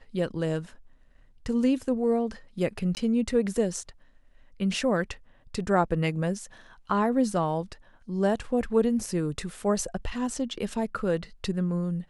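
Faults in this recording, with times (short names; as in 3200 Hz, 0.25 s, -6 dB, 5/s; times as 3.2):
2.95–2.97 gap 19 ms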